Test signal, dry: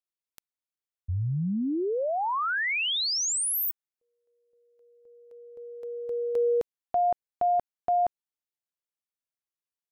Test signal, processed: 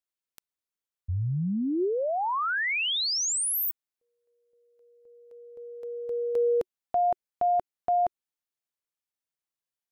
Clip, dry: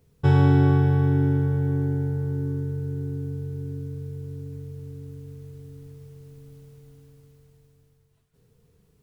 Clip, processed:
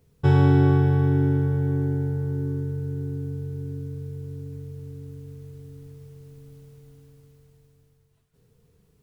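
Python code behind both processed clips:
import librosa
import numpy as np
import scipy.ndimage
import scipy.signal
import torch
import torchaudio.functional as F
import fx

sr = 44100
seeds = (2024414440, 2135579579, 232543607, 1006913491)

y = fx.dynamic_eq(x, sr, hz=370.0, q=6.3, threshold_db=-42.0, ratio=4.0, max_db=3)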